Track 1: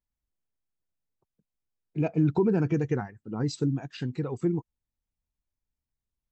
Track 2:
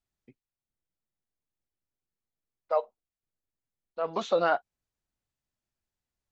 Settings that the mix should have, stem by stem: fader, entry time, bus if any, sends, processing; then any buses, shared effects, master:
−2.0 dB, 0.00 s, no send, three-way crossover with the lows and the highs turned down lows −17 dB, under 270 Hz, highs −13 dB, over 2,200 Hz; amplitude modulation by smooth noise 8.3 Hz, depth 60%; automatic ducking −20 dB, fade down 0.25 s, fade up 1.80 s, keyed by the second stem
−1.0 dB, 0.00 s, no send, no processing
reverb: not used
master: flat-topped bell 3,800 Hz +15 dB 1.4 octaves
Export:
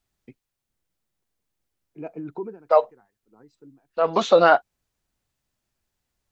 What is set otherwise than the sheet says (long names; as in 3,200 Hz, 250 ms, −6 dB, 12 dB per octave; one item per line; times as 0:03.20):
stem 2 −1.0 dB → +10.0 dB
master: missing flat-topped bell 3,800 Hz +15 dB 1.4 octaves